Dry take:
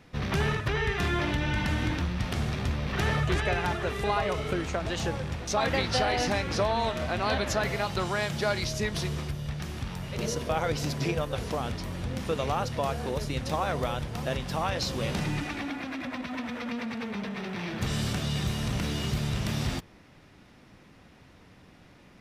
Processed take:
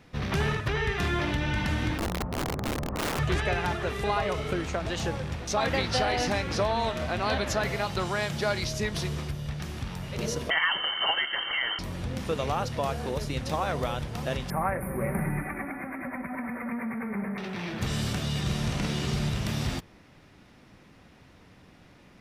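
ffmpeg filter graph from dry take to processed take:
-filter_complex "[0:a]asettb=1/sr,asplit=3[s0][s1][s2];[s0]atrim=end=1.984[s3];[s1]atrim=start=1.98:end=3.19,asetpts=PTS-STARTPTS,afade=t=in:d=0.004:c=qsin,afade=t=out:st=1.206:d=0.004:c=qsin,lowpass=f=1100:w=0.5412,lowpass=f=1100:w=1.3066,aeval=exprs='(mod(16.8*val(0)+1,2)-1)/16.8':c=same[s4];[s2]atrim=start=3.186[s5];[s3][s4]acrossfade=d=0.004:c1=hsin:c2=qsin[s6];[s6][s5]acrossfade=d=0.004:c1=qsin:c2=hsin,asettb=1/sr,asplit=3[s7][s8][s9];[s7]atrim=end=10.504[s10];[s8]atrim=start=10.5:end=11.79,asetpts=PTS-STARTPTS,afade=t=in:d=0.004:c=qsin,afade=t=out:st=1.286:d=0.004:c=qsin,equalizer=f=1700:w=0.59:g=11,lowpass=f=2700:t=q:w=0.5098,lowpass=f=2700:t=q:w=0.6013,lowpass=f=2700:t=q:w=0.9,lowpass=f=2700:t=q:w=2.563,afreqshift=-3200,asuperstop=centerf=2500:order=12:qfactor=5.1[s11];[s9]atrim=start=11.786[s12];[s10][s11]acrossfade=d=0.004:c1=hsin:c2=qsin[s13];[s13][s12]acrossfade=d=0.004:c1=qsin:c2=hsin,asettb=1/sr,asplit=3[s14][s15][s16];[s14]atrim=end=14.504[s17];[s15]atrim=start=14.5:end=17.38,asetpts=PTS-STARTPTS,afade=t=in:d=0.004:c=qsin,afade=t=out:st=2.876:d=0.004:c=qsin,asuperstop=centerf=4800:order=20:qfactor=0.69,highshelf=f=4500:g=8,aecho=1:1:5.2:0.45,atrim=end_sample=127008[s18];[s16]atrim=start=17.376[s19];[s17][s18]acrossfade=d=0.004:c1=hsin:c2=qsin[s20];[s20][s19]acrossfade=d=0.004:c1=qsin:c2=hsin,asettb=1/sr,asplit=3[s21][s22][s23];[s21]atrim=end=18.414[s24];[s22]atrim=start=18.41:end=19.29,asetpts=PTS-STARTPTS,afade=t=in:d=0.004:c=qsin,afade=t=out:st=0.876:d=0.004:c=qsin,acrossover=split=9800[s25][s26];[s26]acompressor=threshold=0.001:ratio=4:attack=1:release=60[s27];[s25][s27]amix=inputs=2:normalize=0,asplit=2[s28][s29];[s29]adelay=49,volume=0.668[s30];[s28][s30]amix=inputs=2:normalize=0,atrim=end_sample=38808[s31];[s23]atrim=start=19.286[s32];[s24][s31]acrossfade=d=0.004:c1=hsin:c2=qsin[s33];[s33][s32]acrossfade=d=0.004:c1=qsin:c2=hsin"

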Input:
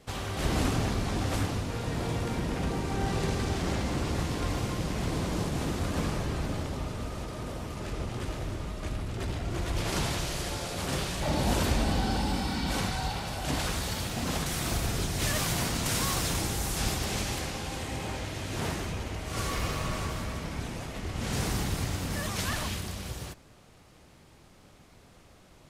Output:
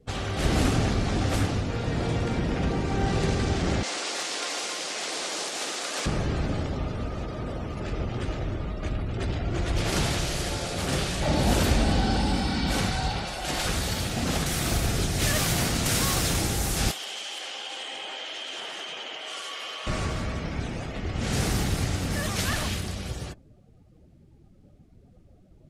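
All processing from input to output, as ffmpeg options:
-filter_complex "[0:a]asettb=1/sr,asplit=3[s0][s1][s2];[s0]atrim=end=3.834[s3];[s1]atrim=start=3.83:end=6.06,asetpts=PTS-STARTPTS,afade=t=in:d=0.004:c=qsin,afade=t=out:st=2.226:d=0.004:c=qsin,highpass=440,lowpass=6300,aemphasis=mode=production:type=riaa[s4];[s2]atrim=start=6.056[s5];[s3][s4]acrossfade=d=0.004:c1=hsin:c2=qsin[s6];[s6][s5]acrossfade=d=0.004:c1=qsin:c2=hsin,asettb=1/sr,asplit=3[s7][s8][s9];[s7]atrim=end=13.254[s10];[s8]atrim=start=13.25:end=13.66,asetpts=PTS-STARTPTS,afade=t=in:d=0.004:c=qsin,afade=t=out:st=0.406:d=0.004:c=qsin,equalizer=f=120:w=0.5:g=-10,aecho=1:1:5.6:0.36,atrim=end_sample=18081[s11];[s9]atrim=start=13.656[s12];[s10][s11]acrossfade=d=0.004:c1=hsin:c2=qsin[s13];[s13][s12]acrossfade=d=0.004:c1=qsin:c2=hsin,asettb=1/sr,asplit=3[s14][s15][s16];[s14]atrim=end=16.914[s17];[s15]atrim=start=16.91:end=19.87,asetpts=PTS-STARTPTS,afade=t=in:d=0.004:c=qsin,afade=t=out:st=2.956:d=0.004:c=qsin,highpass=620,equalizer=f=3100:t=o:w=0.22:g=13,acompressor=threshold=0.0178:ratio=10:attack=3.2:release=140:knee=1:detection=peak[s18];[s16]atrim=start=19.866[s19];[s17][s18]acrossfade=d=0.004:c1=hsin:c2=qsin[s20];[s20][s19]acrossfade=d=0.004:c1=qsin:c2=hsin,afftdn=nr=21:nf=-50,equalizer=f=1000:t=o:w=0.27:g=-6,volume=1.68"

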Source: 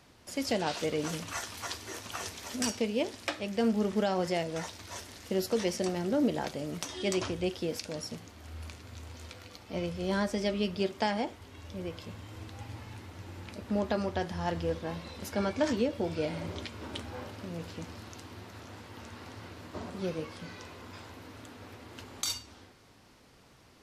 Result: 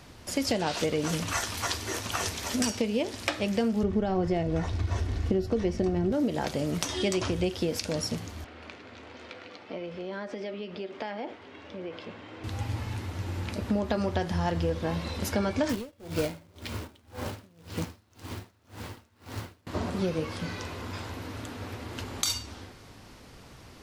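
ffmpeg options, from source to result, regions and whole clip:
-filter_complex "[0:a]asettb=1/sr,asplit=3[s0][s1][s2];[s0]atrim=end=3.834[s3];[s1]atrim=start=3.83:end=6.12,asetpts=PTS-STARTPTS,afade=t=in:d=0.004:c=qsin,afade=t=out:st=2.286:d=0.004:c=qsin,aemphasis=mode=reproduction:type=riaa,aecho=1:1:2.7:0.31,atrim=end_sample=100989[s4];[s2]atrim=start=6.116[s5];[s3][s4]acrossfade=d=0.004:c1=hsin:c2=qsin[s6];[s6][s5]acrossfade=d=0.004:c1=qsin:c2=hsin,asettb=1/sr,asplit=3[s7][s8][s9];[s7]atrim=end=8.444[s10];[s8]atrim=start=8.44:end=12.44,asetpts=PTS-STARTPTS,afade=t=in:d=0.004:c=qsin,afade=t=out:st=3.996:d=0.004:c=qsin,equalizer=f=1000:t=o:w=1:g=-3.5,acompressor=threshold=0.0141:ratio=10:attack=3.2:release=140:knee=1:detection=peak,highpass=320,lowpass=2700[s11];[s9]atrim=start=12.436[s12];[s10][s11]acrossfade=d=0.004:c1=hsin:c2=qsin[s13];[s13][s12]acrossfade=d=0.004:c1=qsin:c2=hsin,asettb=1/sr,asplit=3[s14][s15][s16];[s14]atrim=end=15.694[s17];[s15]atrim=start=15.69:end=19.67,asetpts=PTS-STARTPTS,afade=t=in:d=0.004:c=qsin,afade=t=out:st=3.976:d=0.004:c=qsin,acrusher=bits=2:mode=log:mix=0:aa=0.000001,asoftclip=type=hard:threshold=0.0668,aeval=exprs='val(0)*pow(10,-31*(0.5-0.5*cos(2*PI*1.9*n/s))/20)':c=same[s18];[s16]atrim=start=19.666[s19];[s17][s18]acrossfade=d=0.004:c1=hsin:c2=qsin[s20];[s20][s19]acrossfade=d=0.004:c1=qsin:c2=hsin,lowshelf=f=110:g=7,acompressor=threshold=0.0251:ratio=6,volume=2.51"

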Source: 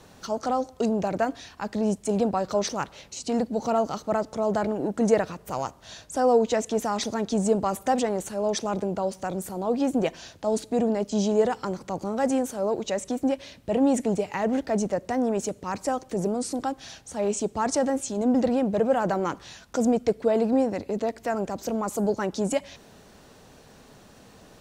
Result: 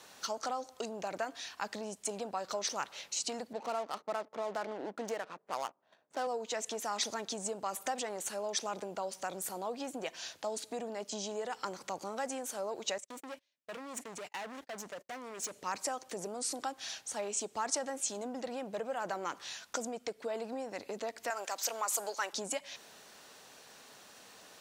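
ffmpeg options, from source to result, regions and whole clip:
-filter_complex "[0:a]asettb=1/sr,asplit=3[s0][s1][s2];[s0]atrim=end=3.534[s3];[s1]atrim=start=3.53:end=6.27,asetpts=PTS-STARTPTS,afade=t=in:d=0.004:c=qsin,afade=t=out:st=2.736:d=0.004:c=qsin,highpass=190,agate=range=0.282:threshold=0.00794:ratio=16:release=100:detection=peak,adynamicsmooth=sensitivity=8:basefreq=720[s4];[s2]atrim=start=6.266[s5];[s3][s4]acrossfade=d=0.004:c1=hsin:c2=qsin[s6];[s6][s5]acrossfade=d=0.004:c1=qsin:c2=hsin,asettb=1/sr,asplit=3[s7][s8][s9];[s7]atrim=end=12.984[s10];[s8]atrim=start=12.98:end=15.54,asetpts=PTS-STARTPTS,afade=t=in:d=0.004:c=qsin,afade=t=out:st=2.556:d=0.004:c=qsin,agate=range=0.0126:threshold=0.0158:ratio=16:release=100:detection=peak,acompressor=threshold=0.0398:ratio=8:attack=3.2:release=140:knee=1:detection=peak,volume=50.1,asoftclip=hard,volume=0.02[s11];[s9]atrim=start=15.536[s12];[s10][s11]acrossfade=d=0.004:c1=hsin:c2=qsin[s13];[s13][s12]acrossfade=d=0.004:c1=qsin:c2=hsin,asettb=1/sr,asplit=3[s14][s15][s16];[s14]atrim=end=21.304[s17];[s15]atrim=start=21.3:end=22.33,asetpts=PTS-STARTPTS,afade=t=in:d=0.004:c=qsin,afade=t=out:st=1.026:d=0.004:c=qsin,highpass=440,tiltshelf=f=720:g=-5.5[s18];[s16]atrim=start=22.326[s19];[s17][s18]acrossfade=d=0.004:c1=hsin:c2=qsin[s20];[s20][s19]acrossfade=d=0.004:c1=qsin:c2=hsin,acompressor=threshold=0.0398:ratio=4,highpass=f=1400:p=1,volume=1.26"

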